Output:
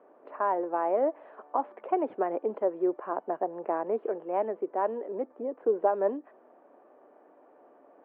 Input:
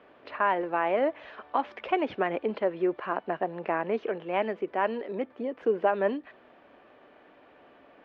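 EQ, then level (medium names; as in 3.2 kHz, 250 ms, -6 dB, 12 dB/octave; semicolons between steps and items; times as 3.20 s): Butterworth band-pass 540 Hz, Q 0.7; 0.0 dB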